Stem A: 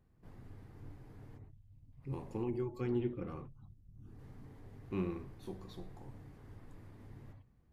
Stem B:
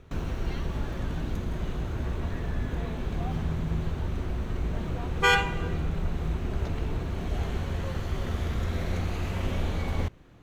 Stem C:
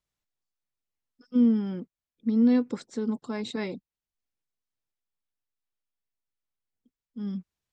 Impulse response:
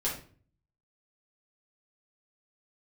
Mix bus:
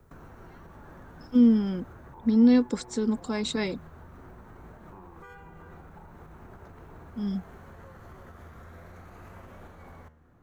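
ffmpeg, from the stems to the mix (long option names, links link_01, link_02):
-filter_complex "[0:a]lowpass=frequency=910:width_type=q:width=8.9,volume=-1dB[link_01];[1:a]highshelf=frequency=2100:width_type=q:width=1.5:gain=-12,flanger=delay=8.8:depth=4.1:regen=84:speed=0.64:shape=triangular,volume=-2dB[link_02];[2:a]volume=2.5dB[link_03];[link_01][link_02]amix=inputs=2:normalize=0,acrossover=split=100|560[link_04][link_05][link_06];[link_04]acompressor=threshold=-48dB:ratio=4[link_07];[link_05]acompressor=threshold=-45dB:ratio=4[link_08];[link_06]acompressor=threshold=-43dB:ratio=4[link_09];[link_07][link_08][link_09]amix=inputs=3:normalize=0,alimiter=level_in=15dB:limit=-24dB:level=0:latency=1:release=202,volume=-15dB,volume=0dB[link_10];[link_03][link_10]amix=inputs=2:normalize=0,aemphasis=mode=production:type=50kf"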